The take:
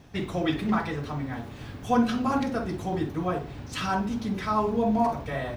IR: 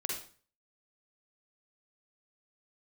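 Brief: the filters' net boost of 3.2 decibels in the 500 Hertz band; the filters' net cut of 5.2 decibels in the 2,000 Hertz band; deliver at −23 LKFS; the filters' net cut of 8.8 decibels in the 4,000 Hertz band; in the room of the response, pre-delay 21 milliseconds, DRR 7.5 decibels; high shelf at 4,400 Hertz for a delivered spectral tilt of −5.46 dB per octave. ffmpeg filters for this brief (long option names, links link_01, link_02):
-filter_complex "[0:a]equalizer=frequency=500:width_type=o:gain=4.5,equalizer=frequency=2000:width_type=o:gain=-5,equalizer=frequency=4000:width_type=o:gain=-8,highshelf=frequency=4400:gain=-3.5,asplit=2[link_01][link_02];[1:a]atrim=start_sample=2205,adelay=21[link_03];[link_02][link_03]afir=irnorm=-1:irlink=0,volume=-10.5dB[link_04];[link_01][link_04]amix=inputs=2:normalize=0,volume=3.5dB"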